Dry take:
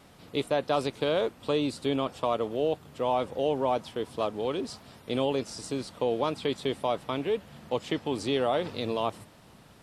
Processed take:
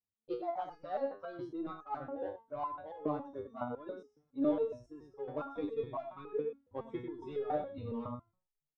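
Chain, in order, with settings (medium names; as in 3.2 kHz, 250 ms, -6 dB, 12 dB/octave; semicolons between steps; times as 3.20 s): gliding tape speed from 122% -> 102%; spectral noise reduction 23 dB; gate with hold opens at -57 dBFS; Bessel low-pass 1 kHz, order 2; bass shelf 110 Hz +10 dB; hum notches 60/120/180/240 Hz; delay 98 ms -8 dB; in parallel at -6 dB: saturation -27.5 dBFS, distortion -12 dB; on the sum: resonator arpeggio 7.2 Hz 99–420 Hz; trim +2 dB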